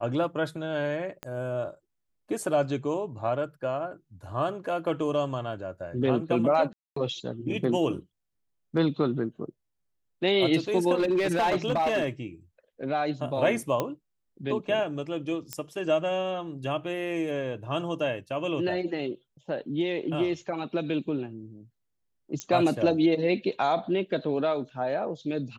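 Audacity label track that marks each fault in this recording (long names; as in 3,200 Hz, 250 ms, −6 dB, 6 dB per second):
1.230000	1.230000	click −21 dBFS
6.730000	6.960000	drop-out 234 ms
10.950000	12.060000	clipping −20.5 dBFS
13.800000	13.800000	click −13 dBFS
15.530000	15.530000	click −14 dBFS
22.400000	22.400000	click −17 dBFS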